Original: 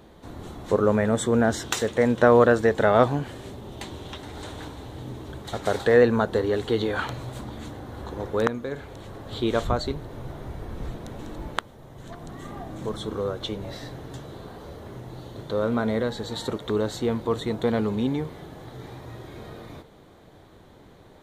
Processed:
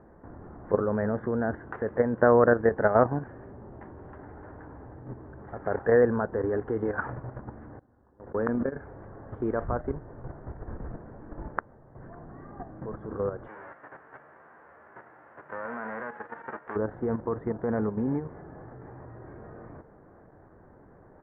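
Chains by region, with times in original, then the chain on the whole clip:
7.79–8.77 s: gate -29 dBFS, range -25 dB + peaking EQ 250 Hz +5 dB 0.35 oct + decay stretcher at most 32 dB/s
13.46–16.75 s: formants flattened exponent 0.3 + high-pass 570 Hz 6 dB/octave + doubling 13 ms -7 dB
whole clip: elliptic low-pass 1.7 kHz, stop band 60 dB; level held to a coarse grid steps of 9 dB

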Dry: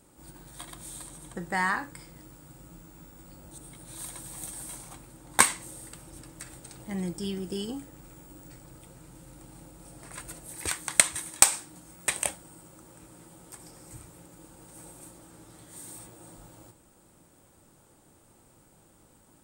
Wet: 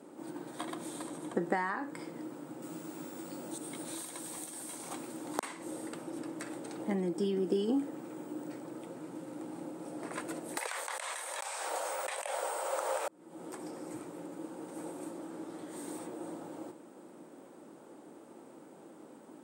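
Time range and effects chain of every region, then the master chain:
2.62–5.43 s: treble shelf 2.6 kHz +11 dB + inverted gate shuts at -8 dBFS, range -41 dB
10.57–13.08 s: steep high-pass 500 Hz 48 dB/octave + level flattener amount 100%
whole clip: compression 20:1, threshold -35 dBFS; high-pass 270 Hz 24 dB/octave; tilt EQ -4 dB/octave; trim +6.5 dB

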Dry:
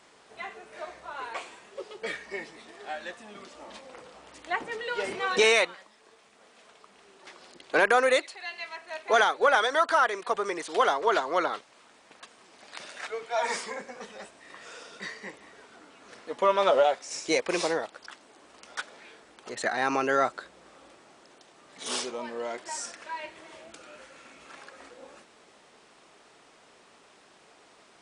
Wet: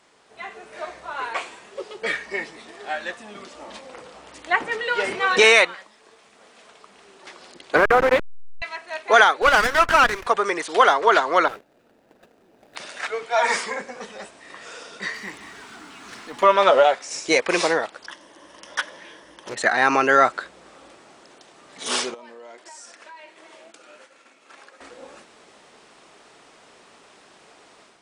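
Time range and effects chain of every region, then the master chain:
7.76–8.62 s: send-on-delta sampling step -22.5 dBFS + low-pass 1.2 kHz 6 dB/octave + loudspeaker Doppler distortion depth 0.16 ms
9.42–10.27 s: tilt shelf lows -5.5 dB, about 1.5 kHz + sliding maximum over 9 samples
11.48–12.76 s: median filter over 41 samples + bass shelf 110 Hz -8.5 dB
15.14–16.43 s: companding laws mixed up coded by mu + peaking EQ 530 Hz -12.5 dB 0.68 oct + transformer saturation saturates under 1.7 kHz
18.06–19.54 s: rippled EQ curve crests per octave 1.2, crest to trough 9 dB + loudspeaker Doppler distortion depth 0.23 ms
22.14–24.81 s: expander -45 dBFS + high-pass 240 Hz + compression 4:1, threshold -48 dBFS
whole clip: level rider gain up to 7 dB; dynamic bell 1.7 kHz, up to +5 dB, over -33 dBFS, Q 0.75; trim -1 dB

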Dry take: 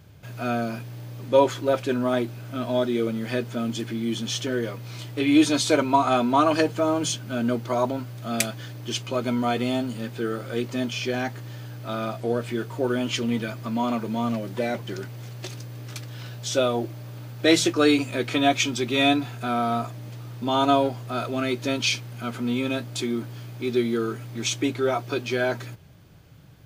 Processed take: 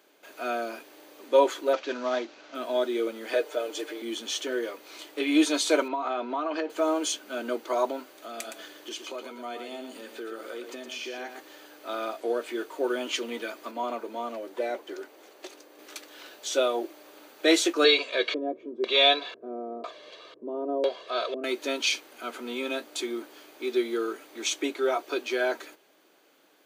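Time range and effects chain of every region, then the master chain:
1.73–2.55 s: CVSD coder 32 kbps + peaking EQ 370 Hz -6 dB 0.42 oct
3.33–4.02 s: resonant high-pass 470 Hz, resonance Q 2 + comb 6.7 ms, depth 55%
5.88–6.70 s: distance through air 190 m + compression 12:1, threshold -22 dBFS
8.17–11.44 s: compression 5:1, threshold -30 dBFS + delay 116 ms -7.5 dB
13.71–15.79 s: high-pass 550 Hz 6 dB/octave + tilt shelf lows +6 dB, about 900 Hz
17.84–21.44 s: LFO low-pass square 1 Hz 300–3800 Hz + comb 1.8 ms, depth 75%
whole clip: steep high-pass 300 Hz 36 dB/octave; band-stop 5.2 kHz, Q 14; trim -2 dB

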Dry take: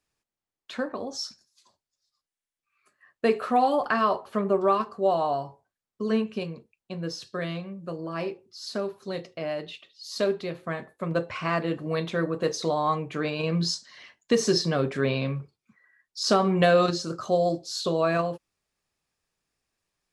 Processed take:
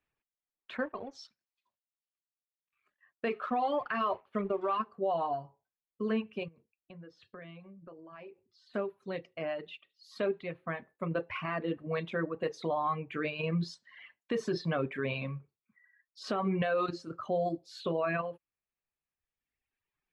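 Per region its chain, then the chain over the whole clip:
0.77–4.77 s: companding laws mixed up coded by A + low-pass 6.1 kHz + treble shelf 3 kHz +7 dB
6.48–8.74 s: compression 4:1, threshold -42 dBFS + distance through air 77 m
whole clip: reverb removal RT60 1.5 s; resonant high shelf 3.8 kHz -13.5 dB, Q 1.5; peak limiter -18.5 dBFS; trim -4 dB

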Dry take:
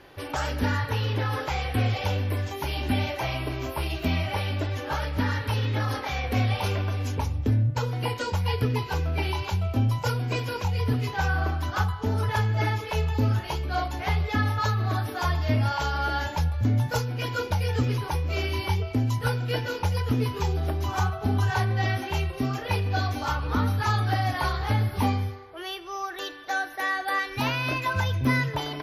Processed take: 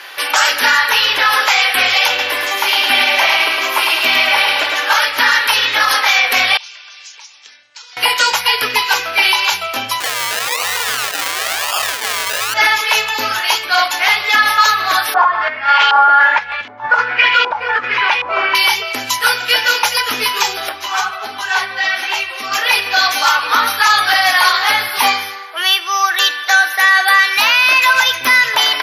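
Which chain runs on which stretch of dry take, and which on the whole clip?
2.08–4.84 s: treble shelf 4.1 kHz -6.5 dB + feedback delay 107 ms, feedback 50%, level -4 dB
6.57–7.97 s: inverse Chebyshev low-pass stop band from 11 kHz + differentiator + compression 3:1, threshold -59 dBFS
10.00–12.54 s: comb 1.7 ms, depth 98% + decimation with a swept rate 32×, swing 60% 1 Hz
15.14–18.55 s: compressor with a negative ratio -26 dBFS, ratio -0.5 + LFO low-pass saw up 1.3 Hz 890–3000 Hz
20.69–22.52 s: treble shelf 8.6 kHz -11 dB + compression 2:1, threshold -26 dBFS + three-phase chorus
whole clip: high-pass 1.4 kHz 12 dB/octave; loudness maximiser +25 dB; trim -1 dB

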